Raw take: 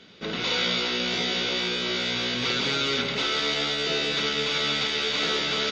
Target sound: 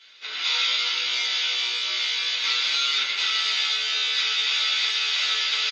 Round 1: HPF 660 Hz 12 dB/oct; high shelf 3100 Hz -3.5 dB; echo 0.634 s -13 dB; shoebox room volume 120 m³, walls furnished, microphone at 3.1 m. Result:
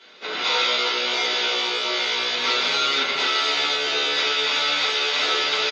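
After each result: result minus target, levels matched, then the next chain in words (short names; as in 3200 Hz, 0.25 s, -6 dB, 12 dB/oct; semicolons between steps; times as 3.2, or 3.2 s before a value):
500 Hz band +17.5 dB; echo 0.182 s late
HPF 2100 Hz 12 dB/oct; high shelf 3100 Hz -3.5 dB; echo 0.634 s -13 dB; shoebox room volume 120 m³, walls furnished, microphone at 3.1 m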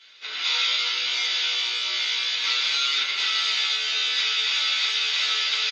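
echo 0.182 s late
HPF 2100 Hz 12 dB/oct; high shelf 3100 Hz -3.5 dB; echo 0.452 s -13 dB; shoebox room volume 120 m³, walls furnished, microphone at 3.1 m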